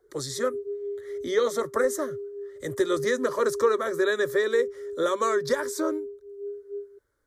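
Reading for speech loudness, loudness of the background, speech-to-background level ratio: -27.0 LUFS, -35.5 LUFS, 8.5 dB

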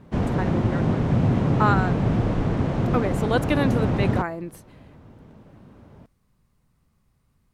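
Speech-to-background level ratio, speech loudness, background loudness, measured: -4.5 dB, -27.5 LUFS, -23.0 LUFS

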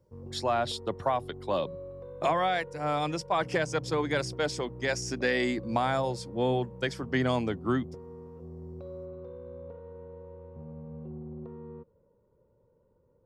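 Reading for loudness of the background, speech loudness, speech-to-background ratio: -44.0 LUFS, -30.0 LUFS, 14.0 dB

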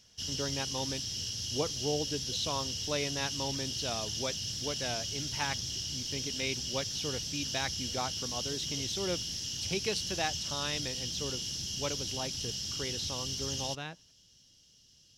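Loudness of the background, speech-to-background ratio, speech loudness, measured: -34.5 LUFS, -3.5 dB, -38.0 LUFS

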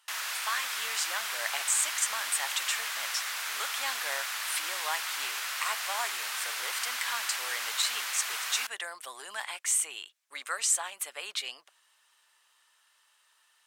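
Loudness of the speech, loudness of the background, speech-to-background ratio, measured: -33.0 LUFS, -32.5 LUFS, -0.5 dB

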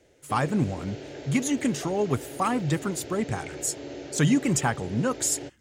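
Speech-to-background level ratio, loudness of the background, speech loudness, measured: 12.5 dB, -39.5 LUFS, -27.0 LUFS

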